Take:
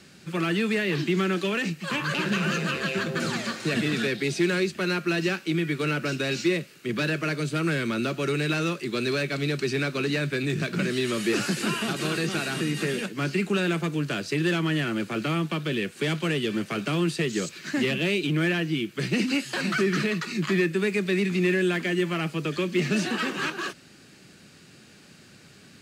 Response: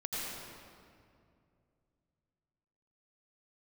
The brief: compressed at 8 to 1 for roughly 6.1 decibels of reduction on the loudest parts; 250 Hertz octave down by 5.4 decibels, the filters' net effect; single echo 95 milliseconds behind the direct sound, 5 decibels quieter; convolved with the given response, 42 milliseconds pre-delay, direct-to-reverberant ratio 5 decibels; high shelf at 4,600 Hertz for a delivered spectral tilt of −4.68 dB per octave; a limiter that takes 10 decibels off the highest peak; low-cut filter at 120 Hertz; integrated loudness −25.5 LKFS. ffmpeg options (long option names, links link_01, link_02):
-filter_complex "[0:a]highpass=120,equalizer=frequency=250:width_type=o:gain=-8,highshelf=frequency=4600:gain=-5,acompressor=threshold=-29dB:ratio=8,alimiter=level_in=5dB:limit=-24dB:level=0:latency=1,volume=-5dB,aecho=1:1:95:0.562,asplit=2[link_01][link_02];[1:a]atrim=start_sample=2205,adelay=42[link_03];[link_02][link_03]afir=irnorm=-1:irlink=0,volume=-9dB[link_04];[link_01][link_04]amix=inputs=2:normalize=0,volume=9.5dB"